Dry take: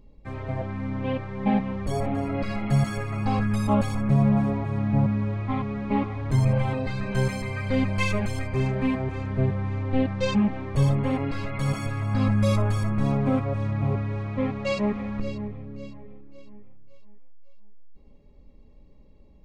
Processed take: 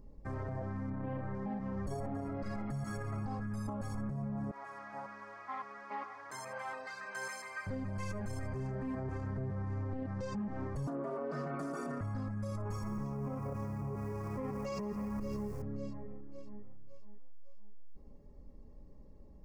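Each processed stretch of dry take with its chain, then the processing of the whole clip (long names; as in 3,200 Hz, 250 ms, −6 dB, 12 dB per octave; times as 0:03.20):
0:00.90–0:01.35: high-frequency loss of the air 270 metres + double-tracking delay 37 ms −4.5 dB
0:04.51–0:07.67: high-pass filter 1,200 Hz + high-shelf EQ 7,000 Hz −4.5 dB
0:10.87–0:12.01: hollow resonant body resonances 440/1,000 Hz, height 13 dB, ringing for 25 ms + frequency shifter +140 Hz + highs frequency-modulated by the lows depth 0.12 ms
0:12.65–0:15.62: EQ curve with evenly spaced ripples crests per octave 0.78, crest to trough 8 dB + feedback echo at a low word length 167 ms, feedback 35%, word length 7 bits, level −13 dB
whole clip: flat-topped bell 3,000 Hz −13.5 dB 1.1 octaves; downward compressor, threshold −28 dBFS; brickwall limiter −30 dBFS; level −1.5 dB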